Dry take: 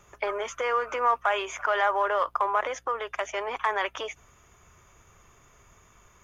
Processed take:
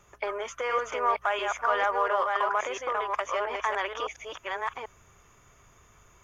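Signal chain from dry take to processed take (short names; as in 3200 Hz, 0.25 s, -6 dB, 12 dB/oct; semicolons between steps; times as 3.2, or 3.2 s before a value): reverse delay 0.694 s, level -3 dB; gain -2.5 dB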